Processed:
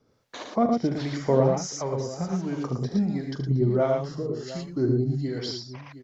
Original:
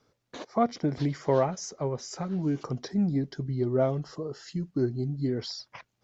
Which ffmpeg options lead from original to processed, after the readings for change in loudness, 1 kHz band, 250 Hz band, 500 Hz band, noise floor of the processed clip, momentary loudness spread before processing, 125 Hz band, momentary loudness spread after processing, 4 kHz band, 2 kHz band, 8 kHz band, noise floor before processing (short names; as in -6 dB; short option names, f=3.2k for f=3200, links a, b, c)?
+3.0 dB, +2.0 dB, +3.0 dB, +3.5 dB, -64 dBFS, 11 LU, +4.0 dB, 11 LU, +3.5 dB, +3.5 dB, n/a, -78 dBFS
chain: -filter_complex "[0:a]bandreject=f=50:t=h:w=6,bandreject=f=100:t=h:w=6,bandreject=f=150:t=h:w=6,aecho=1:1:42|75|113|715:0.237|0.376|0.631|0.178,acrossover=split=590[a][b];[a]aeval=exprs='val(0)*(1-0.7/2+0.7/2*cos(2*PI*1.4*n/s))':c=same[c];[b]aeval=exprs='val(0)*(1-0.7/2-0.7/2*cos(2*PI*1.4*n/s))':c=same[d];[c][d]amix=inputs=2:normalize=0,volume=5dB"